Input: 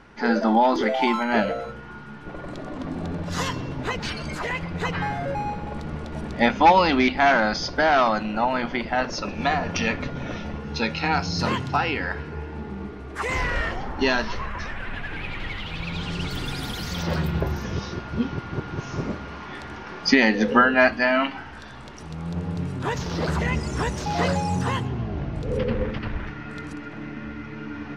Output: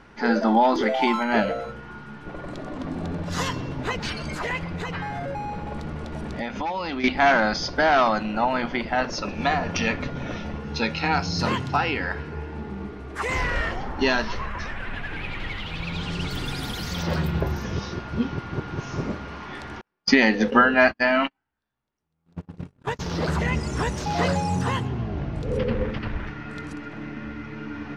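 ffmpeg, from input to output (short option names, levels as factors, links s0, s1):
-filter_complex "[0:a]asettb=1/sr,asplit=3[s0][s1][s2];[s0]atrim=end=4.634[s3];[s1]atrim=start=4.63:end=7.04,asetpts=PTS-STARTPTS,afade=t=in:d=0.004:c=qsin,afade=t=out:st=2.406:d=0.004:c=qsin,acompressor=threshold=0.0501:ratio=6:attack=3.2:release=140:knee=1:detection=peak[s4];[s2]atrim=start=7.036[s5];[s3][s4]acrossfade=d=0.004:c1=hsin:c2=qsin[s6];[s6][s5]acrossfade=d=0.004:c1=qsin:c2=hsin,asettb=1/sr,asplit=3[s7][s8][s9];[s7]atrim=end=19.814[s10];[s8]atrim=start=19.81:end=23,asetpts=PTS-STARTPTS,afade=t=in:d=0.004:c=qsin,afade=t=out:st=3.186:d=0.004:c=qsin,agate=range=0.00631:threshold=0.0501:ratio=16:release=100:detection=peak[s11];[s9]atrim=start=22.996[s12];[s10][s11]acrossfade=d=0.004:c1=hsin:c2=qsin[s13];[s13][s12]acrossfade=d=0.004:c1=qsin:c2=hsin"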